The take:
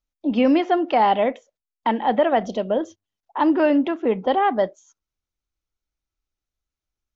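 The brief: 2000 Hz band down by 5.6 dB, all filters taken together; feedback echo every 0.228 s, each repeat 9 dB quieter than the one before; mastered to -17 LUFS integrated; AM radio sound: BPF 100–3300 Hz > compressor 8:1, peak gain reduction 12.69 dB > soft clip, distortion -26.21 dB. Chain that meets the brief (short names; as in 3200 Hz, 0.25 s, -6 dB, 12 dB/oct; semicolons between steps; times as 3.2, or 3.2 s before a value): BPF 100–3300 Hz; bell 2000 Hz -6.5 dB; feedback echo 0.228 s, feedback 35%, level -9 dB; compressor 8:1, threshold -26 dBFS; soft clip -17.5 dBFS; gain +14.5 dB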